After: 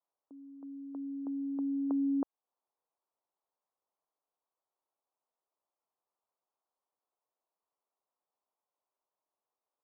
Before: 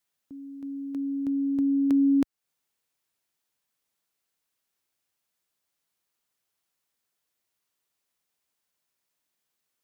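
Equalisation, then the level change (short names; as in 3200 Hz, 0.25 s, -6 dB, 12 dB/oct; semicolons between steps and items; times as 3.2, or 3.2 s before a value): HPF 530 Hz 12 dB/oct; steep low-pass 1100 Hz 36 dB/oct; +2.0 dB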